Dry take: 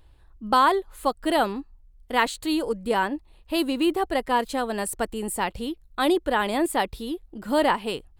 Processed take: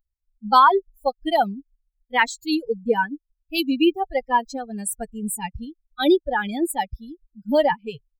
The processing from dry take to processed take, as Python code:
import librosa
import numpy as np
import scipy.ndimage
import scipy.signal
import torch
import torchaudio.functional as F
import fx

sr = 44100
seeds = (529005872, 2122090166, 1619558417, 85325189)

y = fx.bin_expand(x, sr, power=3.0)
y = y * librosa.db_to_amplitude(8.5)